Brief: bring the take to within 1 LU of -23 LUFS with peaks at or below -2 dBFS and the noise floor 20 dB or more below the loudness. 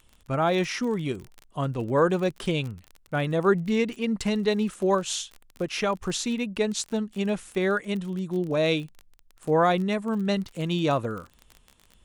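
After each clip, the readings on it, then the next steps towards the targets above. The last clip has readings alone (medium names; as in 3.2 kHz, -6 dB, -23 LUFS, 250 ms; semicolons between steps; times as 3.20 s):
tick rate 29 per s; loudness -26.5 LUFS; peak level -10.0 dBFS; loudness target -23.0 LUFS
-> de-click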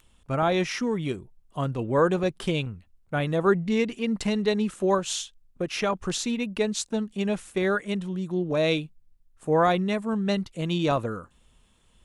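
tick rate 0.25 per s; loudness -26.5 LUFS; peak level -10.0 dBFS; loudness target -23.0 LUFS
-> trim +3.5 dB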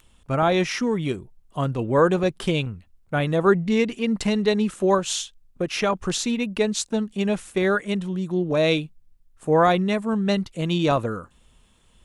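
loudness -23.0 LUFS; peak level -6.5 dBFS; noise floor -58 dBFS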